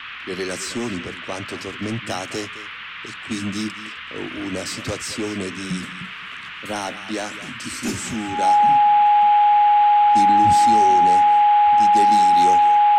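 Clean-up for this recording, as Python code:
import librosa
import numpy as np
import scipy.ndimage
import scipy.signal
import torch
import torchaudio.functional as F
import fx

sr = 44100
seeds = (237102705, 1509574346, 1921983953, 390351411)

y = fx.notch(x, sr, hz=830.0, q=30.0)
y = fx.noise_reduce(y, sr, print_start_s=6.14, print_end_s=6.64, reduce_db=29.0)
y = fx.fix_echo_inverse(y, sr, delay_ms=213, level_db=-15.5)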